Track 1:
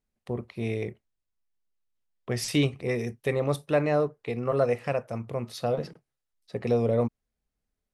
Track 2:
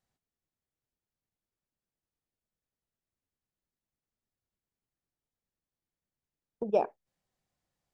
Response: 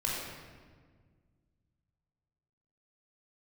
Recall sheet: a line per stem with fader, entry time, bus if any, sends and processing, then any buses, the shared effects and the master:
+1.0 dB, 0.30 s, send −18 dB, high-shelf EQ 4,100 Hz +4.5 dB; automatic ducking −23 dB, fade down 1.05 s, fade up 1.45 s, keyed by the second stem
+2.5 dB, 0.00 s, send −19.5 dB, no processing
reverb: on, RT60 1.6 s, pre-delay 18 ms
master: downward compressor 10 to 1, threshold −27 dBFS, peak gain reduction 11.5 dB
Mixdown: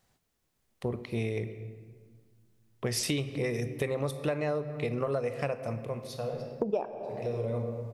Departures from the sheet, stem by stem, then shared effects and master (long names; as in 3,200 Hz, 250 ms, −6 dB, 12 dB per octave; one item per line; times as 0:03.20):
stem 1: entry 0.30 s → 0.55 s
stem 2 +2.5 dB → +13.0 dB